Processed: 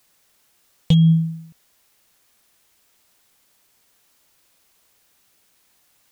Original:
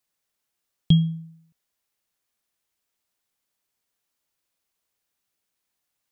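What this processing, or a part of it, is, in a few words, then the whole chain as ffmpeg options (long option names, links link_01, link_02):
loud club master: -af "acompressor=threshold=-25dB:ratio=1.5,asoftclip=type=hard:threshold=-16dB,alimiter=level_in=26.5dB:limit=-1dB:release=50:level=0:latency=1,volume=-8dB"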